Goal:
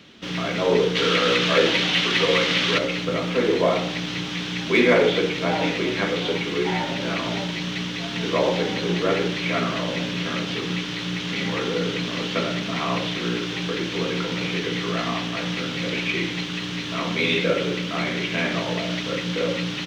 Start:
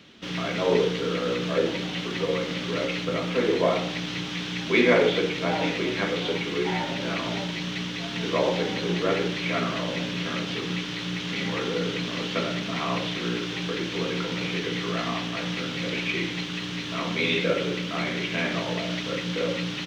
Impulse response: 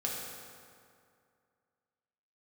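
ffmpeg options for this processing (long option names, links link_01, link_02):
-filter_complex "[0:a]asplit=3[link_01][link_02][link_03];[link_01]afade=type=out:start_time=0.95:duration=0.02[link_04];[link_02]equalizer=frequency=2800:width=0.34:gain=10.5,afade=type=in:start_time=0.95:duration=0.02,afade=type=out:start_time=2.77:duration=0.02[link_05];[link_03]afade=type=in:start_time=2.77:duration=0.02[link_06];[link_04][link_05][link_06]amix=inputs=3:normalize=0,asplit=2[link_07][link_08];[link_08]asoftclip=type=hard:threshold=-17dB,volume=-8dB[link_09];[link_07][link_09]amix=inputs=2:normalize=0"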